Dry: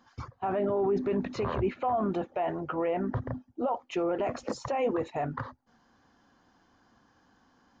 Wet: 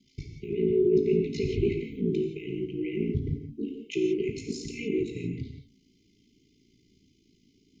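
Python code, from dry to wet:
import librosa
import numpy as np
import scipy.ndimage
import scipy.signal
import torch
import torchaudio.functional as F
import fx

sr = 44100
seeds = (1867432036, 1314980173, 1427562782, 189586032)

y = x * np.sin(2.0 * np.pi * 28.0 * np.arange(len(x)) / sr)
y = fx.brickwall_bandstop(y, sr, low_hz=450.0, high_hz=2000.0)
y = fx.rev_gated(y, sr, seeds[0], gate_ms=200, shape='flat', drr_db=2.5)
y = y * 10.0 ** (5.0 / 20.0)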